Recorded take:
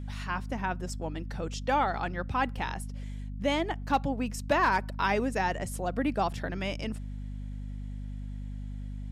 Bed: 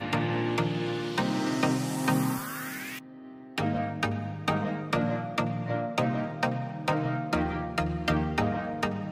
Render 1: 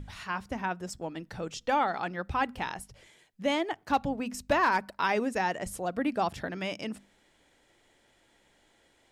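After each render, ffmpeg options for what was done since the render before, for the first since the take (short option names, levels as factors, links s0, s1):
-af "bandreject=f=50:t=h:w=6,bandreject=f=100:t=h:w=6,bandreject=f=150:t=h:w=6,bandreject=f=200:t=h:w=6,bandreject=f=250:t=h:w=6"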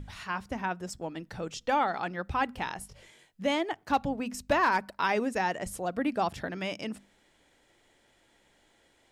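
-filter_complex "[0:a]asettb=1/sr,asplit=3[s0][s1][s2];[s0]atrim=end=2.794[s3];[s1]atrim=start=2.79:end=3.47,asetpts=PTS-STARTPTS,afade=t=in:d=0.004:c=qsin,afade=t=out:st=0.676:d=0.004:c=qsin,asplit=2[s4][s5];[s5]adelay=21,volume=0.668[s6];[s4][s6]amix=inputs=2:normalize=0,atrim=end_sample=29988[s7];[s2]atrim=start=3.466[s8];[s3][s7]acrossfade=d=0.004:c1=hsin:c2=qsin[s9];[s9][s8]acrossfade=d=0.004:c1=qsin:c2=hsin"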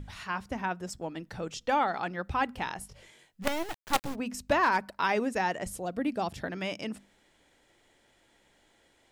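-filter_complex "[0:a]asplit=3[s0][s1][s2];[s0]afade=t=out:st=3.42:d=0.02[s3];[s1]acrusher=bits=4:dc=4:mix=0:aa=0.000001,afade=t=in:st=3.42:d=0.02,afade=t=out:st=4.14:d=0.02[s4];[s2]afade=t=in:st=4.14:d=0.02[s5];[s3][s4][s5]amix=inputs=3:normalize=0,asettb=1/sr,asplit=3[s6][s7][s8];[s6]atrim=end=5.724[s9];[s7]atrim=start=5.72:end=6.43,asetpts=PTS-STARTPTS,afade=t=in:d=0.004:c=qsin,afade=t=out:st=0.706:d=0.004:c=qsin,equalizer=f=1300:t=o:w=2:g=-5.5[s10];[s8]atrim=start=6.426[s11];[s9][s10]acrossfade=d=0.004:c1=hsin:c2=qsin[s12];[s12][s11]acrossfade=d=0.004:c1=qsin:c2=hsin"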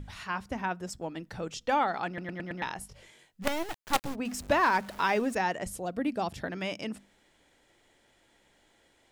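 -filter_complex "[0:a]asettb=1/sr,asplit=3[s0][s1][s2];[s0]atrim=end=4.254[s3];[s1]atrim=start=4.25:end=5.35,asetpts=PTS-STARTPTS,afade=t=in:d=0.004:c=qsin,afade=t=out:st=1.096:d=0.004:c=qsin,aeval=exprs='val(0)+0.5*0.00794*sgn(val(0))':c=same[s4];[s2]atrim=start=5.346[s5];[s3][s4]acrossfade=d=0.004:c1=hsin:c2=qsin[s6];[s6][s5]acrossfade=d=0.004:c1=qsin:c2=hsin,asplit=6[s7][s8][s9][s10][s11][s12];[s7]atrim=end=2.182[s13];[s8]atrim=start=2.068:end=2.182[s14];[s9]atrim=start=2.068:end=2.182[s15];[s10]atrim=start=2.068:end=2.182[s16];[s11]atrim=start=2.068:end=2.182[s17];[s12]atrim=start=2.618[s18];[s13][s14]acrossfade=d=0.004:c1=hsin:c2=hsin[s19];[s19][s15]acrossfade=d=0.004:c1=hsin:c2=hsin[s20];[s20][s16]acrossfade=d=0.004:c1=hsin:c2=hsin[s21];[s21][s17]acrossfade=d=0.004:c1=hsin:c2=hsin[s22];[s22][s18]acrossfade=d=0.004:c1=hsin:c2=hsin"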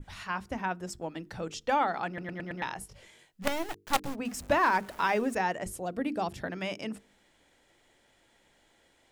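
-af "bandreject=f=50:t=h:w=6,bandreject=f=100:t=h:w=6,bandreject=f=150:t=h:w=6,bandreject=f=200:t=h:w=6,bandreject=f=250:t=h:w=6,bandreject=f=300:t=h:w=6,bandreject=f=350:t=h:w=6,bandreject=f=400:t=h:w=6,bandreject=f=450:t=h:w=6,adynamicequalizer=threshold=0.00316:dfrequency=4200:dqfactor=1.1:tfrequency=4200:tqfactor=1.1:attack=5:release=100:ratio=0.375:range=2:mode=cutabove:tftype=bell"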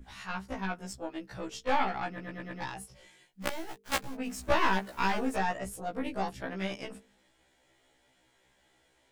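-af "aeval=exprs='0.282*(cos(1*acos(clip(val(0)/0.282,-1,1)))-cos(1*PI/2))+0.0794*(cos(4*acos(clip(val(0)/0.282,-1,1)))-cos(4*PI/2))':c=same,afftfilt=real='re*1.73*eq(mod(b,3),0)':imag='im*1.73*eq(mod(b,3),0)':win_size=2048:overlap=0.75"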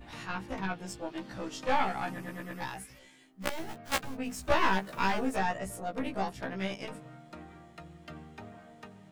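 -filter_complex "[1:a]volume=0.1[s0];[0:a][s0]amix=inputs=2:normalize=0"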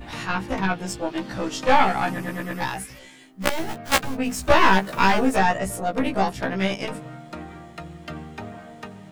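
-af "volume=3.55,alimiter=limit=0.708:level=0:latency=1"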